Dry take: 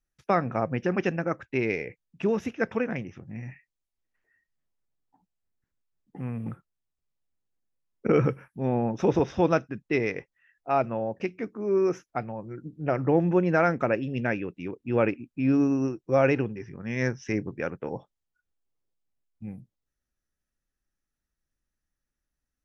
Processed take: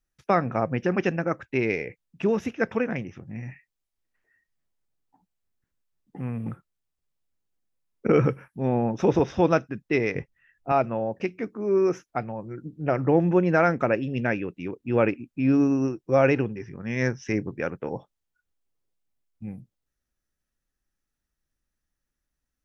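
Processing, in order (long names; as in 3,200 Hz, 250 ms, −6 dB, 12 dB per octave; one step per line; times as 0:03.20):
0:10.15–0:10.72: bass and treble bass +13 dB, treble −2 dB
level +2 dB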